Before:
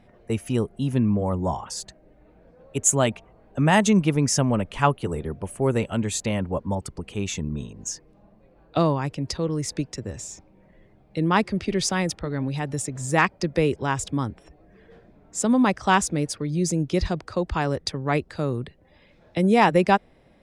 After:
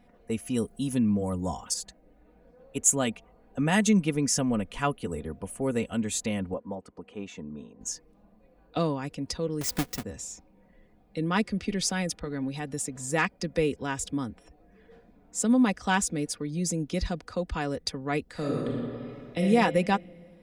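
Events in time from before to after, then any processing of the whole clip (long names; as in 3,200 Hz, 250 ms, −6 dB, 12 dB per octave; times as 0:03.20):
0:00.56–0:01.74: bass and treble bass +1 dB, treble +10 dB
0:06.54–0:07.81: resonant band-pass 640 Hz, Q 0.61
0:09.61–0:10.03: each half-wave held at its own peak
0:18.30–0:19.41: thrown reverb, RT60 2.2 s, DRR −3.5 dB
whole clip: high-shelf EQ 10,000 Hz +8 dB; comb filter 4.1 ms, depth 51%; dynamic equaliser 930 Hz, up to −5 dB, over −37 dBFS, Q 1.6; level −5.5 dB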